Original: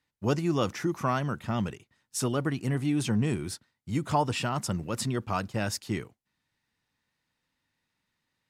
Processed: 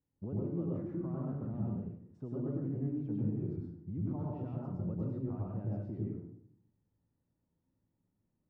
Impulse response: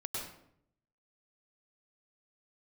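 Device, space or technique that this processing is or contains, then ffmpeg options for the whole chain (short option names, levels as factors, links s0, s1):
television next door: -filter_complex "[0:a]acompressor=threshold=0.0126:ratio=5,lowpass=440[s0];[1:a]atrim=start_sample=2205[s1];[s0][s1]afir=irnorm=-1:irlink=0,volume=1.33"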